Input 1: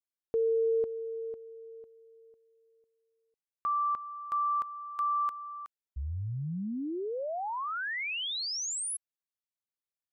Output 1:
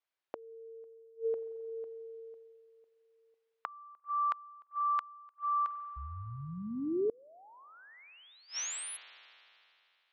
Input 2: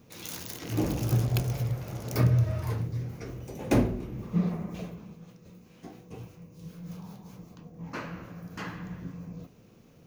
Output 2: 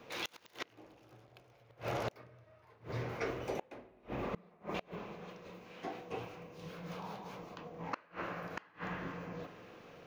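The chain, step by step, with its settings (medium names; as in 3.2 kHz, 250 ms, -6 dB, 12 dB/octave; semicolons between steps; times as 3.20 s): three-band isolator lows -18 dB, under 400 Hz, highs -18 dB, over 4 kHz; spring tank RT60 2.9 s, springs 44 ms, chirp 35 ms, DRR 13.5 dB; inverted gate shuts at -34 dBFS, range -31 dB; trim +9.5 dB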